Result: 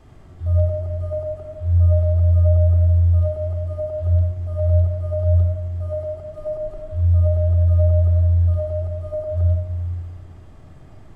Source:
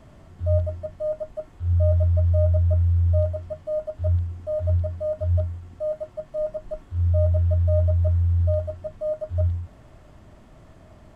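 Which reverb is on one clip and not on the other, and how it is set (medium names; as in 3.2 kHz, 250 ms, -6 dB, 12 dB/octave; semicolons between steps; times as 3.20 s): simulated room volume 3300 m³, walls furnished, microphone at 3.8 m; trim -2 dB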